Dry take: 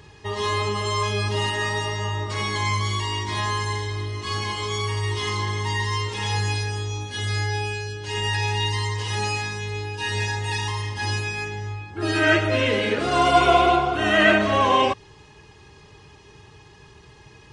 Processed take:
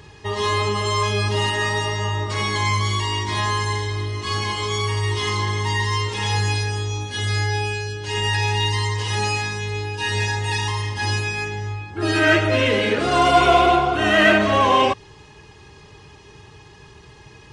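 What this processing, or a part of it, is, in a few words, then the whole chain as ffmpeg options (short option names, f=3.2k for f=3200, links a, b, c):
parallel distortion: -filter_complex "[0:a]asplit=2[a][b];[b]asoftclip=type=hard:threshold=-18dB,volume=-7dB[c];[a][c]amix=inputs=2:normalize=0"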